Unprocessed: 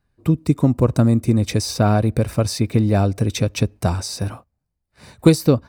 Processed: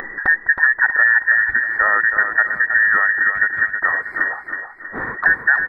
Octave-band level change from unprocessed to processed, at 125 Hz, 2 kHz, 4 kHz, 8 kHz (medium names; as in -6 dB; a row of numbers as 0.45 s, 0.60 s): under -25 dB, +25.0 dB, under -30 dB, under -40 dB